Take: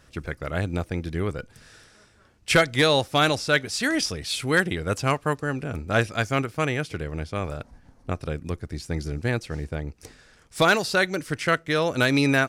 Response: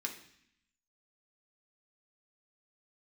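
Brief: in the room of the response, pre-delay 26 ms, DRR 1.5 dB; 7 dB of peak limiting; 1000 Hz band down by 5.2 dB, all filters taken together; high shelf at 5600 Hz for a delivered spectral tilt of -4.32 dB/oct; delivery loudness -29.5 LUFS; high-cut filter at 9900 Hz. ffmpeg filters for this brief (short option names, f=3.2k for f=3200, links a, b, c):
-filter_complex "[0:a]lowpass=9.9k,equalizer=f=1k:t=o:g=-8,highshelf=f=5.6k:g=4,alimiter=limit=-14.5dB:level=0:latency=1,asplit=2[a][b];[1:a]atrim=start_sample=2205,adelay=26[c];[b][c]afir=irnorm=-1:irlink=0,volume=-2dB[d];[a][d]amix=inputs=2:normalize=0,volume=-4dB"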